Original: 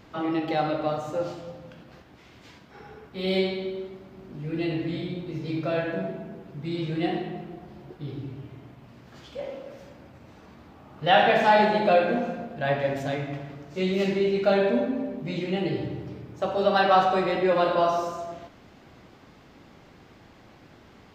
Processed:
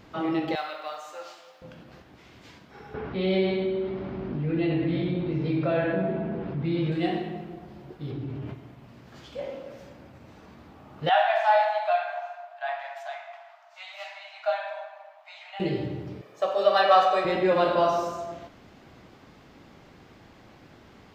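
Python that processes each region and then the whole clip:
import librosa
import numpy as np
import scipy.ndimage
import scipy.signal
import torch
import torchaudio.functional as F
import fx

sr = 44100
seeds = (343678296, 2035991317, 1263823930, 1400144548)

y = fx.chain(x, sr, fx.highpass(hz=1100.0, slope=12),
    fx.quant_companded(bits=8), at=(0.55, 1.62))
y = fx.chain(y, sr, fx.air_absorb(metres=260.0),
    fx.env_flatten(amount_pct=50), at=(2.94, 6.92))
y = fx.chain(y, sr, fx.high_shelf(hz=4300.0, db=-10.5),
    fx.env_flatten(amount_pct=70), at=(8.1, 8.54))
y = fx.chain(y, sr, fx.cheby1_highpass(hz=620.0, order=10),
    fx.high_shelf(hz=2300.0, db=-10.0), at=(11.09, 15.6))
y = fx.chain(y, sr, fx.highpass(hz=430.0, slope=12),
    fx.comb(ms=1.7, depth=0.51), at=(16.21, 17.25))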